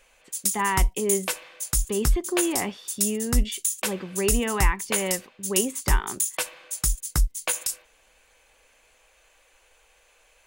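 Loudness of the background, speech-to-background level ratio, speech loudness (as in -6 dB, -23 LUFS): -26.5 LUFS, -2.5 dB, -29.0 LUFS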